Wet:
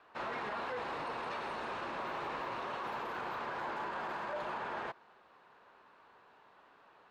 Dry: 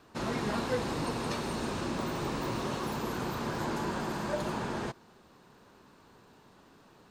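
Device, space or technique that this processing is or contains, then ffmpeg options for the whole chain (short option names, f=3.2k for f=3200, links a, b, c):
DJ mixer with the lows and highs turned down: -filter_complex "[0:a]acrossover=split=520 3100:gain=0.112 1 0.0794[a][b][c];[a][b][c]amix=inputs=3:normalize=0,alimiter=level_in=8dB:limit=-24dB:level=0:latency=1:release=16,volume=-8dB,volume=1dB"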